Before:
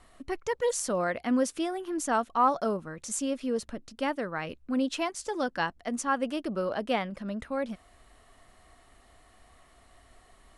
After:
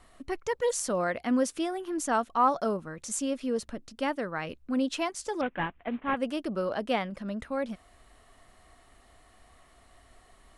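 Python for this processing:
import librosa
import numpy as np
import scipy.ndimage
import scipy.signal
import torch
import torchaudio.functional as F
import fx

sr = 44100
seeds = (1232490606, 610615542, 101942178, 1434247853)

y = fx.cvsd(x, sr, bps=16000, at=(5.41, 6.17))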